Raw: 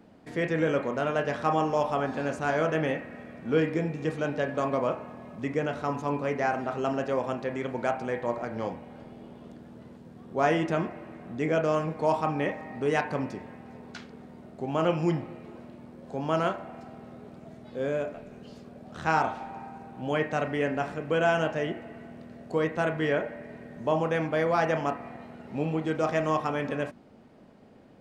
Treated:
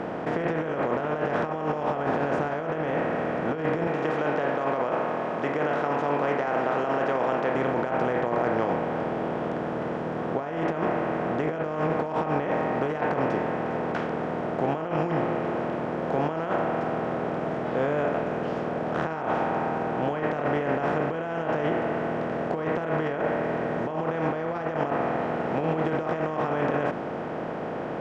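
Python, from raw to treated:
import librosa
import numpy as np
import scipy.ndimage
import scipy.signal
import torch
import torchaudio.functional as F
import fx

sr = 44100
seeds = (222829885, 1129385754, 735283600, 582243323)

y = fx.weighting(x, sr, curve='A', at=(3.87, 7.55))
y = fx.bin_compress(y, sr, power=0.4)
y = fx.over_compress(y, sr, threshold_db=-22.0, ratio=-0.5)
y = fx.lowpass(y, sr, hz=1800.0, slope=6)
y = y * 10.0 ** (-2.5 / 20.0)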